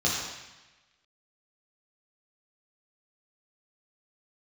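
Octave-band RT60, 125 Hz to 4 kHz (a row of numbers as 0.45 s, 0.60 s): 1.2 s, 1.1 s, 1.0 s, 1.1 s, 1.3 s, 1.1 s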